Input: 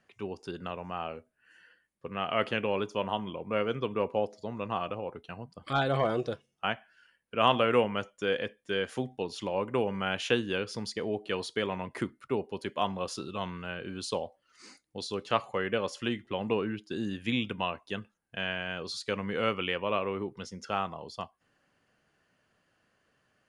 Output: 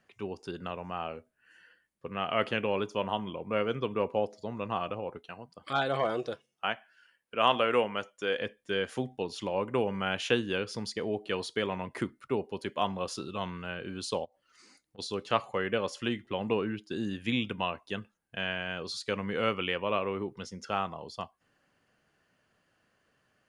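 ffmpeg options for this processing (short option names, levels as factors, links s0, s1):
-filter_complex "[0:a]asettb=1/sr,asplit=3[s0][s1][s2];[s0]atrim=end=5.184[s3];[s1]atrim=start=5.18:end=8.41,asetpts=PTS-STARTPTS,afade=t=in:d=0.004:c=qsin,afade=t=out:st=3.226:d=0.004:c=qsin,lowshelf=f=190:g=-12[s4];[s2]atrim=start=8.406[s5];[s3][s4]acrossfade=d=0.004:c1=hsin:c2=qsin[s6];[s6][s5]acrossfade=d=0.004:c1=qsin:c2=hsin,asplit=3[s7][s8][s9];[s7]afade=t=out:st=14.24:d=0.02[s10];[s8]acompressor=threshold=0.002:ratio=12:attack=3.2:release=140:knee=1:detection=peak,afade=t=in:st=14.24:d=0.02,afade=t=out:st=14.98:d=0.02[s11];[s9]afade=t=in:st=14.98:d=0.02[s12];[s10][s11][s12]amix=inputs=3:normalize=0"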